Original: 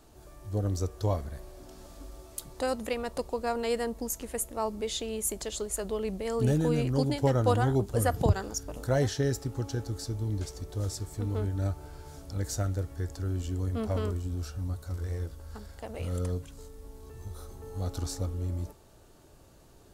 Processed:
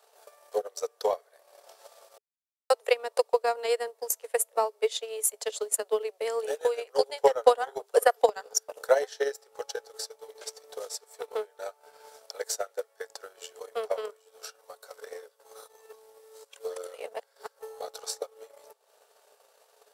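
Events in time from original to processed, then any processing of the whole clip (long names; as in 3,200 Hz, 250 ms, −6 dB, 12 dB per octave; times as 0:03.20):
0:02.18–0:02.70: silence
0:15.43–0:17.59: reverse
whole clip: Chebyshev high-pass filter 420 Hz, order 8; notch filter 6,700 Hz, Q 17; transient designer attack +11 dB, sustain −11 dB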